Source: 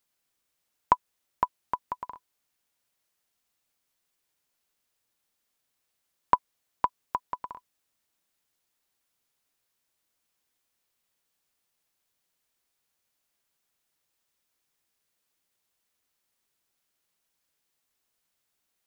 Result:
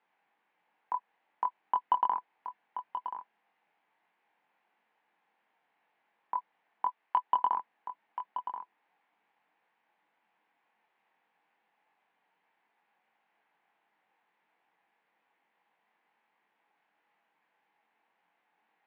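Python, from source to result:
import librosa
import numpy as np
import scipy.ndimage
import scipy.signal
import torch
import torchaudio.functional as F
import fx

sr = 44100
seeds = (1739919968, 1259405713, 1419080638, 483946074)

y = fx.low_shelf(x, sr, hz=450.0, db=-10.5, at=(6.85, 7.27))
y = fx.over_compress(y, sr, threshold_db=-31.0, ratio=-1.0)
y = 10.0 ** (-23.0 / 20.0) * np.tanh(y / 10.0 ** (-23.0 / 20.0))
y = fx.cabinet(y, sr, low_hz=220.0, low_slope=24, high_hz=2200.0, hz=(260.0, 380.0, 570.0, 830.0, 1300.0), db=(-8, -7, -7, 8, -6))
y = fx.doubler(y, sr, ms=23.0, db=-4.0)
y = y + 10.0 ** (-10.0 / 20.0) * np.pad(y, (int(1030 * sr / 1000.0), 0))[:len(y)]
y = y * 10.0 ** (5.0 / 20.0)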